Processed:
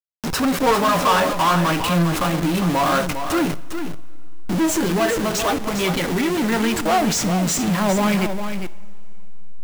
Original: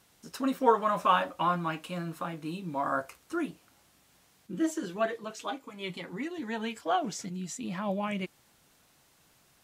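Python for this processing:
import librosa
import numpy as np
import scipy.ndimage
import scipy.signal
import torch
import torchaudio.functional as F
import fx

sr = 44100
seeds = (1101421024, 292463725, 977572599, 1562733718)

p1 = fx.delta_hold(x, sr, step_db=-44.5)
p2 = fx.power_curve(p1, sr, exponent=0.35)
p3 = p2 + fx.echo_single(p2, sr, ms=404, db=-8.5, dry=0)
y = fx.rev_double_slope(p3, sr, seeds[0], early_s=0.51, late_s=3.3, knee_db=-15, drr_db=14.5)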